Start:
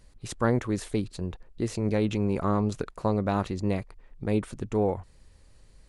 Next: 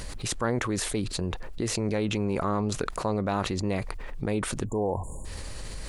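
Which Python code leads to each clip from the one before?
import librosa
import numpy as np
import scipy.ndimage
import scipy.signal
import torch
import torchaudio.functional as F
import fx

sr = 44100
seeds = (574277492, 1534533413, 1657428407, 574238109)

y = fx.spec_erase(x, sr, start_s=4.66, length_s=0.59, low_hz=1100.0, high_hz=6700.0)
y = fx.low_shelf(y, sr, hz=450.0, db=-5.5)
y = fx.env_flatten(y, sr, amount_pct=70)
y = y * librosa.db_to_amplitude(-1.5)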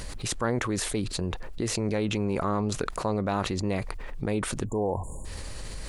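y = x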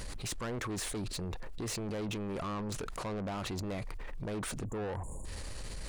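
y = 10.0 ** (-31.0 / 20.0) * np.tanh(x / 10.0 ** (-31.0 / 20.0))
y = y * librosa.db_to_amplitude(-2.5)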